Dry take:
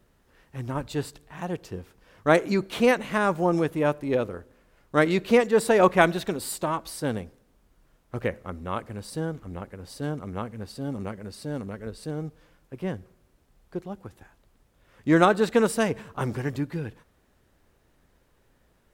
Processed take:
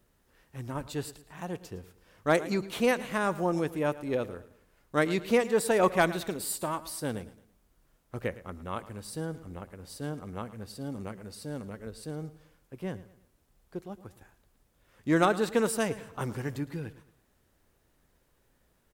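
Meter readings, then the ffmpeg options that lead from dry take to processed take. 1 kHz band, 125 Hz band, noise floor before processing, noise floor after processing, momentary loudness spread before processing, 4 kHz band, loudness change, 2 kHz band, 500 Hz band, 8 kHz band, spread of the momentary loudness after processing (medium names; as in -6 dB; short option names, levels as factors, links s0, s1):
-5.5 dB, -5.5 dB, -65 dBFS, -70 dBFS, 18 LU, -3.5 dB, -5.0 dB, -5.0 dB, -5.5 dB, -0.5 dB, 18 LU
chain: -af "highshelf=f=6200:g=7.5,aecho=1:1:111|222|333:0.141|0.0537|0.0204,asoftclip=type=hard:threshold=0.447,volume=0.531"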